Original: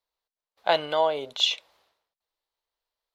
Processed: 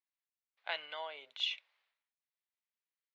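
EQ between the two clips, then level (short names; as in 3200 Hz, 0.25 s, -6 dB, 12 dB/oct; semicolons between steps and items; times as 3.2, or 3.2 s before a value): band-pass 2200 Hz, Q 2.2; -5.5 dB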